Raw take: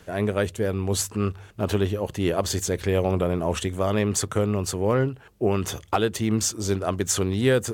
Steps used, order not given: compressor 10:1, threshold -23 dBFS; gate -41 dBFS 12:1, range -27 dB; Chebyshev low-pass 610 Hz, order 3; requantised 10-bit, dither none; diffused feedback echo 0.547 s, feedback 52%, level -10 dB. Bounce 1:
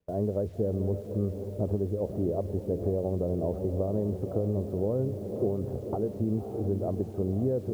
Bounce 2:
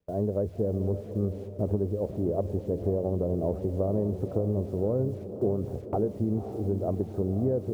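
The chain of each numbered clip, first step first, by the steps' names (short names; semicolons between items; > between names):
diffused feedback echo > compressor > Chebyshev low-pass > requantised > gate; Chebyshev low-pass > requantised > gate > compressor > diffused feedback echo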